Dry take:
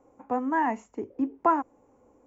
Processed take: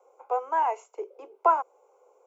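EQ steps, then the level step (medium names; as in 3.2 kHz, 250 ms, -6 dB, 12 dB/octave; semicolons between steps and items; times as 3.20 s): steep high-pass 390 Hz 72 dB/octave; Butterworth band-stop 1.8 kHz, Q 3.5; +2.0 dB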